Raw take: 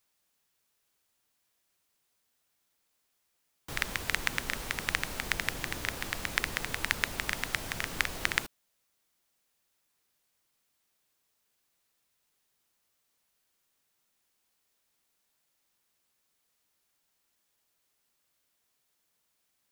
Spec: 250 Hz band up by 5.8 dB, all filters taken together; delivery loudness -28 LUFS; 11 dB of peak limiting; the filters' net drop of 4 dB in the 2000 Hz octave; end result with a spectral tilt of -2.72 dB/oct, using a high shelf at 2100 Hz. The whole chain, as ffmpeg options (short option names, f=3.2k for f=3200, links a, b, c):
-af "equalizer=f=250:t=o:g=7.5,equalizer=f=2k:t=o:g=-7,highshelf=f=2.1k:g=4,volume=8.5dB,alimiter=limit=-3.5dB:level=0:latency=1"